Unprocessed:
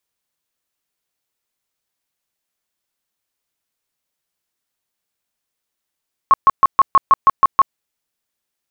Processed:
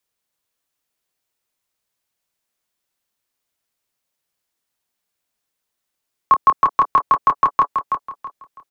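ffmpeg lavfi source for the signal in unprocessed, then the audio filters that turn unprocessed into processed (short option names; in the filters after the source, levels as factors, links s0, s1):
-f lavfi -i "aevalsrc='0.531*sin(2*PI*1090*mod(t,0.16))*lt(mod(t,0.16),30/1090)':d=1.44:s=44100"
-filter_complex "[0:a]acrossover=split=150|330|1200[s0][s1][s2][s3];[s2]asplit=2[s4][s5];[s5]adelay=26,volume=0.562[s6];[s4][s6]amix=inputs=2:normalize=0[s7];[s0][s1][s7][s3]amix=inputs=4:normalize=0,aecho=1:1:327|654|981|1308:0.447|0.13|0.0376|0.0109"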